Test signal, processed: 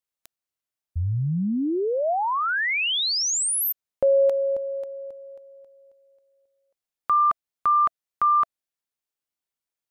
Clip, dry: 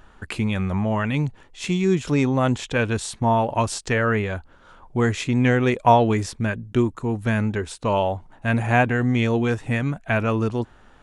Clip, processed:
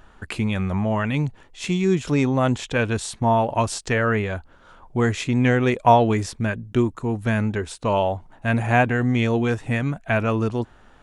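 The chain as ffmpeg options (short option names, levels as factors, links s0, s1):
-af "equalizer=f=670:w=7.5:g=2"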